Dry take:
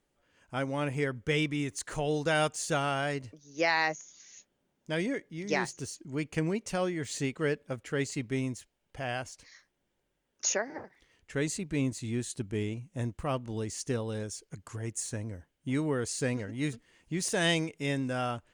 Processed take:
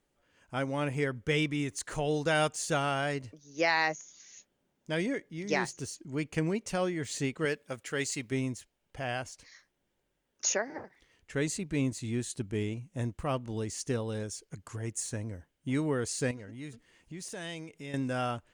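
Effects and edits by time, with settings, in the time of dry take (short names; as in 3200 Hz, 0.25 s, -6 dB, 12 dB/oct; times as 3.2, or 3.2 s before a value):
7.45–8.32 tilt +2 dB/oct
16.31–17.94 compressor 2:1, threshold -47 dBFS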